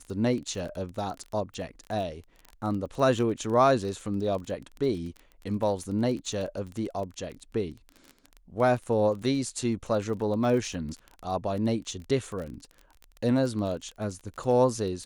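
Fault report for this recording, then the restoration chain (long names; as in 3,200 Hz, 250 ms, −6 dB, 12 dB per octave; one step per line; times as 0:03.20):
surface crackle 22 per second −34 dBFS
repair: click removal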